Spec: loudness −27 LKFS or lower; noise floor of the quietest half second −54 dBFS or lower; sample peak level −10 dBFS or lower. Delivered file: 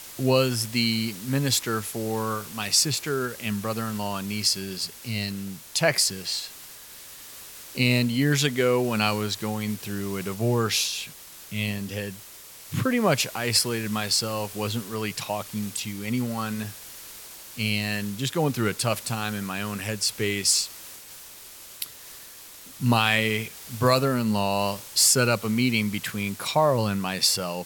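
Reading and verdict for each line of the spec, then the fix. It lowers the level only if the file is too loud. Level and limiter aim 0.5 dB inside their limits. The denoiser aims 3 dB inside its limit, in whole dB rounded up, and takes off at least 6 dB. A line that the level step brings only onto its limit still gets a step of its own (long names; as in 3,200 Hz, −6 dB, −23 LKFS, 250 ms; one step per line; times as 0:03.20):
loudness −25.0 LKFS: out of spec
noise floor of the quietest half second −45 dBFS: out of spec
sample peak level −6.0 dBFS: out of spec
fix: broadband denoise 10 dB, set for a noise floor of −45 dBFS
level −2.5 dB
brickwall limiter −10.5 dBFS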